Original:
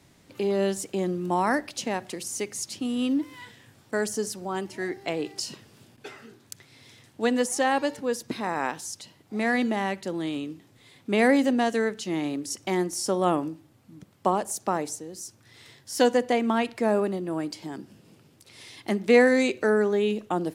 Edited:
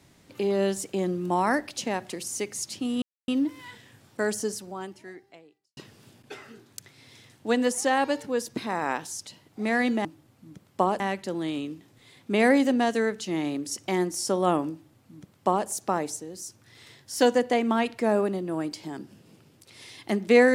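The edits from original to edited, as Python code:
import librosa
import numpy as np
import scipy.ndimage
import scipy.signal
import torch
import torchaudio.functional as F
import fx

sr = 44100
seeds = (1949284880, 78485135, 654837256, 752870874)

y = fx.edit(x, sr, fx.insert_silence(at_s=3.02, length_s=0.26),
    fx.fade_out_span(start_s=4.15, length_s=1.36, curve='qua'),
    fx.duplicate(start_s=13.51, length_s=0.95, to_s=9.79), tone=tone)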